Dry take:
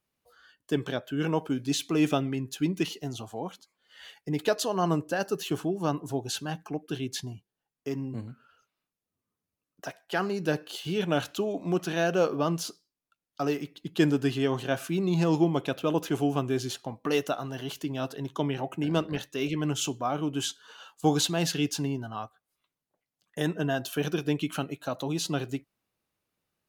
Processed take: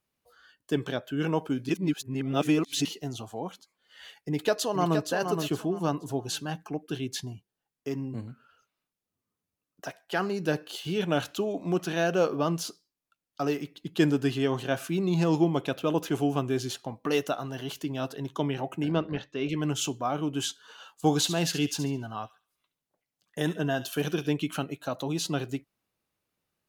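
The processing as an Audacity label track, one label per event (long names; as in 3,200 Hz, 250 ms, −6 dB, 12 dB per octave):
1.690000	2.850000	reverse
4.160000	5.010000	delay throw 470 ms, feedback 25%, level −6 dB
18.910000	19.490000	high-frequency loss of the air 190 metres
20.950000	24.320000	delay with a high-pass on its return 70 ms, feedback 32%, high-pass 2,300 Hz, level −10.5 dB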